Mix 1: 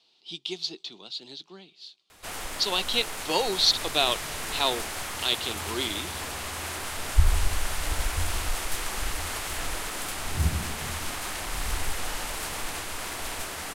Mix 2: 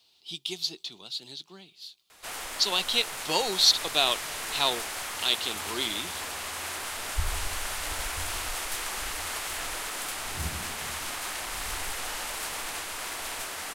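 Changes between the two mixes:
speech: remove band-pass 270–5600 Hz; master: add bass shelf 310 Hz -11 dB

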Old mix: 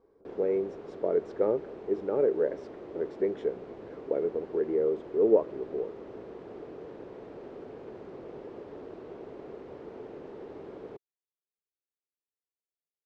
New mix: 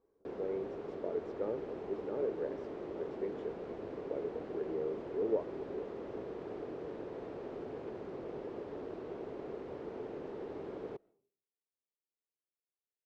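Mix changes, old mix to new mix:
speech -10.5 dB; first sound: send on; second sound: unmuted

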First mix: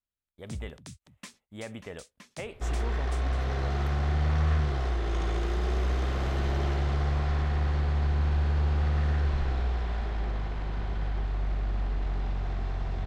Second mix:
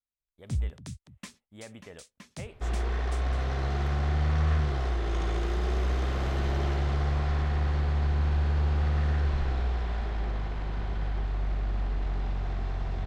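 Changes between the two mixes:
speech -6.0 dB; first sound: add bass shelf 160 Hz +11 dB

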